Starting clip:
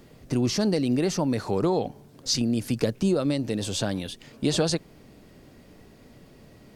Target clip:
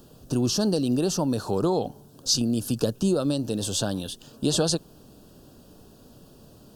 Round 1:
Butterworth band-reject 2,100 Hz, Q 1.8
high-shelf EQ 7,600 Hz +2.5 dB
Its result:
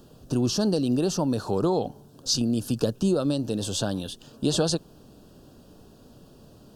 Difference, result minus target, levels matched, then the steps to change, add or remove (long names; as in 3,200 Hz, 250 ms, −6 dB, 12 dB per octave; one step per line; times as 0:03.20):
8,000 Hz band −2.5 dB
change: high-shelf EQ 7,600 Hz +9.5 dB